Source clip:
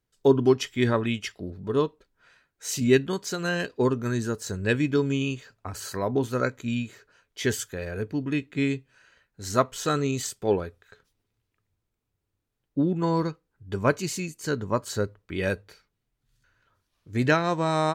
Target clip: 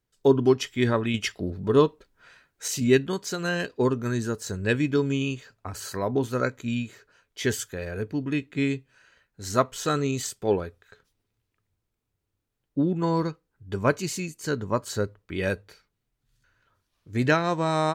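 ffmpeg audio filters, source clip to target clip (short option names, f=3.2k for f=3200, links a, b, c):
-filter_complex "[0:a]asettb=1/sr,asplit=3[a][b][c];[a]atrim=end=1.144[d];[b]atrim=start=1.14:end=2.68,asetpts=PTS-STARTPTS,afade=t=in:d=0.004:c=qsin,afade=t=out:st=1.536:d=0.004:c=qsin,acontrast=34[e];[c]atrim=start=2.676[f];[d][e]acrossfade=d=0.004:c1=hsin:c2=qsin[g];[g][f]acrossfade=d=0.004:c1=qsin:c2=hsin"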